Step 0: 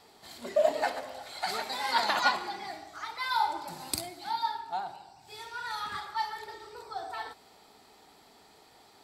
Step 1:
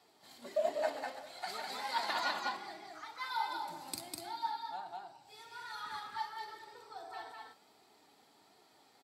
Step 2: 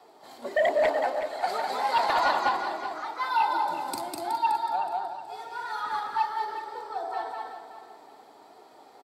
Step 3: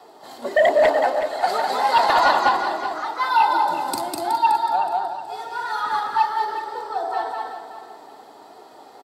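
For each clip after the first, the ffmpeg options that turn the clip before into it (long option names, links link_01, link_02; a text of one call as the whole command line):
ffmpeg -i in.wav -af "aecho=1:1:201|244:0.708|0.133,flanger=delay=2.7:depth=1.2:regen=65:speed=1.4:shape=triangular,highpass=frequency=100:width=0.5412,highpass=frequency=100:width=1.3066,volume=-5dB" out.wav
ffmpeg -i in.wav -filter_complex "[0:a]acrossover=split=330|1200[link_01][link_02][link_03];[link_02]aeval=exprs='0.075*sin(PI/2*2.82*val(0)/0.075)':channel_layout=same[link_04];[link_01][link_04][link_03]amix=inputs=3:normalize=0,aecho=1:1:371|742|1113:0.299|0.0925|0.0287,volume=3.5dB" out.wav
ffmpeg -i in.wav -af "bandreject=frequency=2300:width=9.5,volume=7.5dB" out.wav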